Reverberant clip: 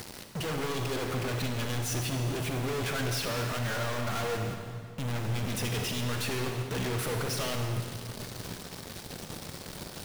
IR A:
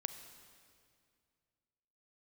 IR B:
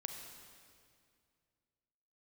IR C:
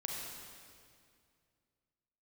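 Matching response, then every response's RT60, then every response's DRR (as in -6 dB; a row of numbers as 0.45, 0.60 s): B; 2.2, 2.2, 2.2 s; 9.0, 4.0, -1.5 dB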